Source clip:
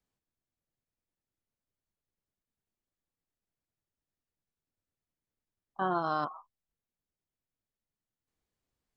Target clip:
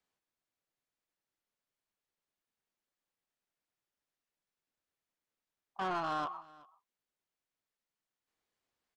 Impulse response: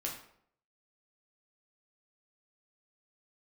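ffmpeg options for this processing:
-filter_complex "[0:a]asplit=2[a][b];[b]highpass=f=720:p=1,volume=19dB,asoftclip=type=tanh:threshold=-18.5dB[c];[a][c]amix=inputs=2:normalize=0,lowpass=f=4.2k:p=1,volume=-6dB,asplit=2[d][e];[e]aecho=0:1:376:0.075[f];[d][f]amix=inputs=2:normalize=0,volume=-9dB"

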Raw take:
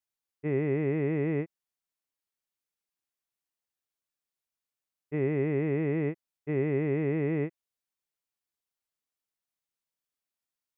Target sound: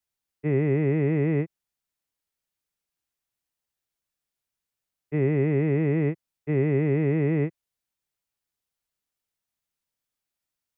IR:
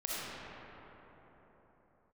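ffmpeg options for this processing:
-filter_complex "[0:a]bandreject=f=1.1k:w=26,acrossover=split=160|610[a][b][c];[a]acontrast=55[d];[d][b][c]amix=inputs=3:normalize=0,volume=3.5dB"

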